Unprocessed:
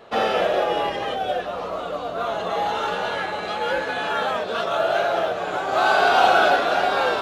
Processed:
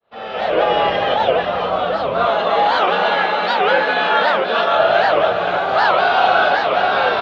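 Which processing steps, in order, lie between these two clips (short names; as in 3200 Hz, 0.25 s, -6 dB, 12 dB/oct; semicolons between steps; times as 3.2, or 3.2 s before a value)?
opening faded in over 0.60 s; 2.27–4.76 HPF 190 Hz 24 dB/oct; echo 0.527 s -8 dB; AGC gain up to 11 dB; LPF 4300 Hz 24 dB/oct; bell 330 Hz -5.5 dB 0.74 oct; record warp 78 rpm, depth 250 cents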